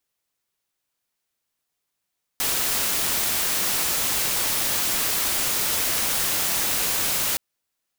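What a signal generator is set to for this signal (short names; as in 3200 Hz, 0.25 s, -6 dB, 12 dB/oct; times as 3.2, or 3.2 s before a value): noise white, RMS -23.5 dBFS 4.97 s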